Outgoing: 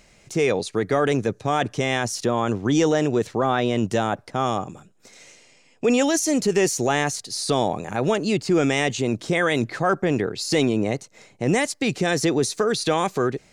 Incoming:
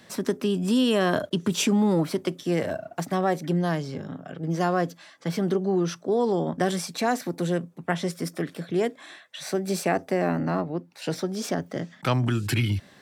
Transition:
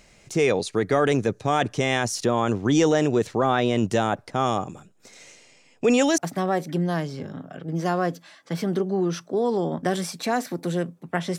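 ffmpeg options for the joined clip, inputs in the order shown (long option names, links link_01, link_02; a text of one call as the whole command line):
ffmpeg -i cue0.wav -i cue1.wav -filter_complex "[0:a]apad=whole_dur=11.38,atrim=end=11.38,atrim=end=6.182[link_01];[1:a]atrim=start=2.928:end=8.13[link_02];[link_01][link_02]acrossfade=duration=0.004:curve1=hsin:curve2=hsin" out.wav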